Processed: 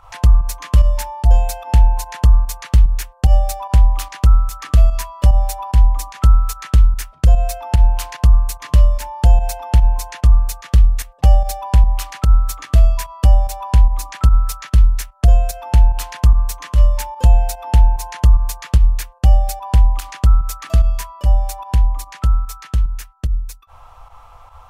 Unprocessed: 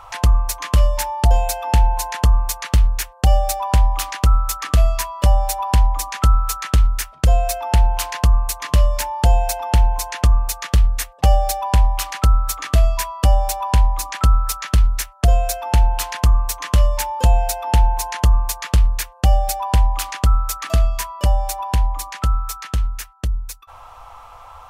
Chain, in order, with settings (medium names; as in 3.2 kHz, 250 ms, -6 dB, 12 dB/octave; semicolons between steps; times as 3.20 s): volume shaper 147 bpm, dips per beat 1, -9 dB, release 87 ms; bass shelf 200 Hz +9 dB; trim -4.5 dB